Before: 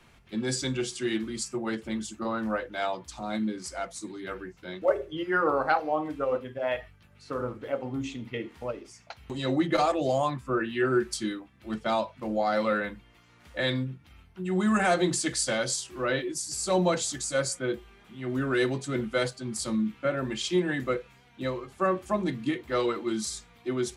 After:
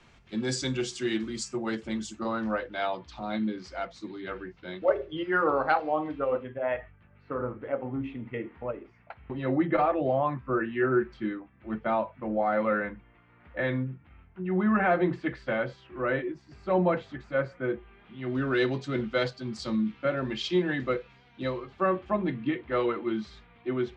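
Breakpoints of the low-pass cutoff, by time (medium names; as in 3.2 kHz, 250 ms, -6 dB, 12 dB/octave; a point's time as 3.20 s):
low-pass 24 dB/octave
2.16 s 7.5 kHz
2.85 s 4.3 kHz
6.01 s 4.3 kHz
6.68 s 2.3 kHz
17.75 s 2.3 kHz
18.44 s 4.9 kHz
21.51 s 4.9 kHz
22.22 s 3 kHz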